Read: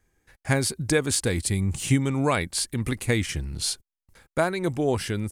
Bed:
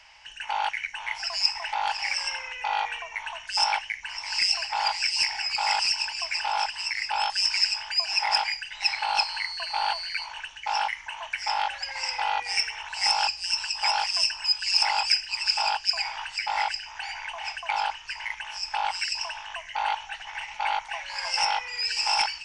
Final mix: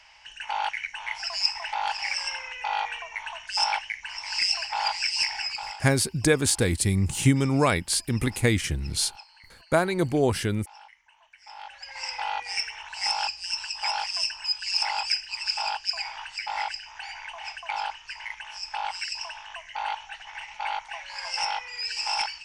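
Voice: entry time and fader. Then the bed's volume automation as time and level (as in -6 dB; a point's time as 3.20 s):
5.35 s, +1.5 dB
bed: 5.46 s -1 dB
5.92 s -23 dB
11.34 s -23 dB
12.02 s -3.5 dB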